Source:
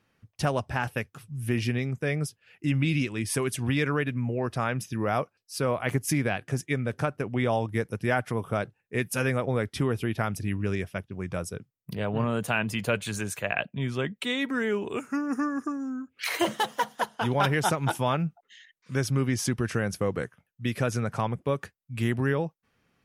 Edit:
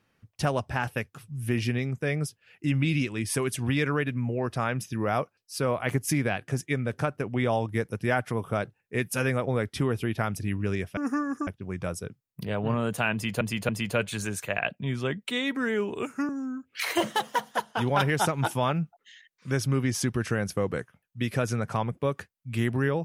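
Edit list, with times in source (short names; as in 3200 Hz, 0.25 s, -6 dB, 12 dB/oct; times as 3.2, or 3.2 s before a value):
12.63–12.91 loop, 3 plays
15.23–15.73 move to 10.97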